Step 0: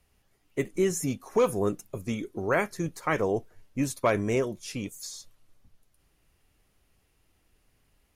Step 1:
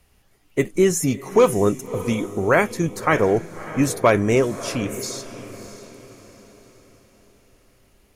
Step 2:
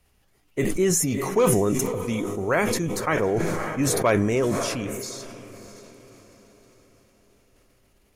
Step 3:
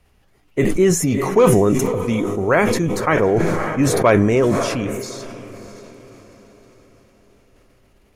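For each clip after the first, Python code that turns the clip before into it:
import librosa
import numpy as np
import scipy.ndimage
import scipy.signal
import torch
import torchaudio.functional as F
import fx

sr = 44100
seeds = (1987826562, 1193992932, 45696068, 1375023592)

y1 = fx.echo_diffused(x, sr, ms=622, feedback_pct=43, wet_db=-14.0)
y1 = y1 * librosa.db_to_amplitude(8.5)
y2 = fx.sustainer(y1, sr, db_per_s=23.0)
y2 = y2 * librosa.db_to_amplitude(-6.0)
y3 = fx.high_shelf(y2, sr, hz=4400.0, db=-9.0)
y3 = y3 * librosa.db_to_amplitude(7.0)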